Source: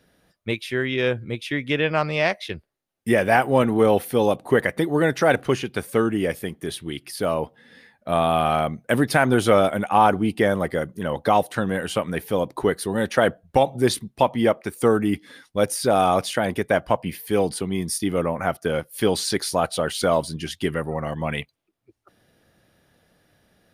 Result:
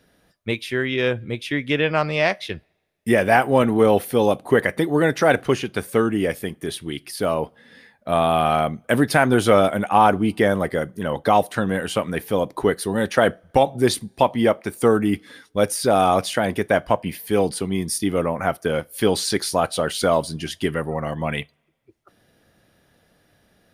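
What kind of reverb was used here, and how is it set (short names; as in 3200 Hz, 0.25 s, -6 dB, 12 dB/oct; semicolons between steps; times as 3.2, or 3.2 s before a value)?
two-slope reverb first 0.22 s, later 1.6 s, from -28 dB, DRR 18.5 dB; gain +1.5 dB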